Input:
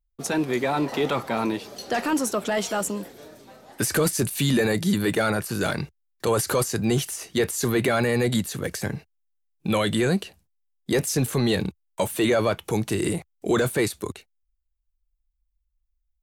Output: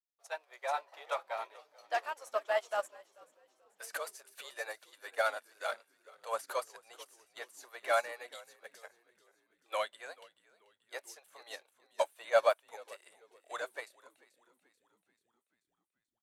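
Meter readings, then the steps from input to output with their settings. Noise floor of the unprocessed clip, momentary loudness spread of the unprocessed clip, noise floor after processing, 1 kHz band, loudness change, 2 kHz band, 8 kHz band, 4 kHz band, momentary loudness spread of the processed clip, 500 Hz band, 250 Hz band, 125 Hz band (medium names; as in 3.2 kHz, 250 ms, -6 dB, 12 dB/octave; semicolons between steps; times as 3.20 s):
-75 dBFS, 10 LU, under -85 dBFS, -7.5 dB, -12.5 dB, -10.5 dB, -21.5 dB, -16.0 dB, 20 LU, -11.5 dB, under -40 dB, under -40 dB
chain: elliptic high-pass 590 Hz, stop band 60 dB; tilt EQ -1.5 dB/octave; frequency-shifting echo 436 ms, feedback 56%, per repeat -61 Hz, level -10 dB; upward expansion 2.5:1, over -38 dBFS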